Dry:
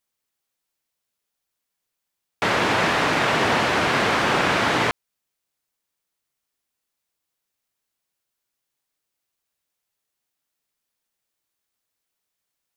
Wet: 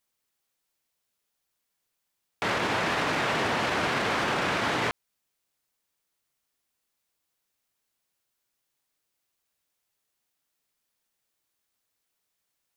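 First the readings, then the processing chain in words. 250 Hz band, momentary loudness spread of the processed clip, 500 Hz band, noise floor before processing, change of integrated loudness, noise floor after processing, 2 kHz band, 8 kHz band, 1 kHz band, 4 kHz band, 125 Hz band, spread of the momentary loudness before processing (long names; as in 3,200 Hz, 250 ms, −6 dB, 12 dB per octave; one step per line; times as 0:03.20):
−6.5 dB, 4 LU, −6.5 dB, −82 dBFS, −6.5 dB, −81 dBFS, −6.5 dB, −6.5 dB, −6.5 dB, −6.5 dB, −6.5 dB, 4 LU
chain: brickwall limiter −19.5 dBFS, peak gain reduction 11.5 dB
level +1 dB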